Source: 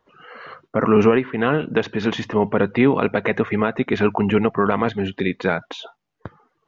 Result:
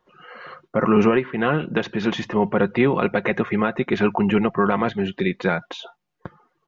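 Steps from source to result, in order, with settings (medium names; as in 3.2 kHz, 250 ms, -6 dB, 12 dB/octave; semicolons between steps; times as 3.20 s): comb 5.6 ms, depth 41%; trim -1.5 dB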